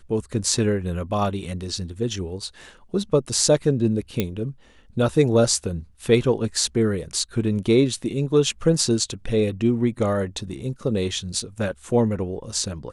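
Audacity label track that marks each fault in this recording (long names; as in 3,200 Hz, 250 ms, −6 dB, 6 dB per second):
4.200000	4.200000	click −8 dBFS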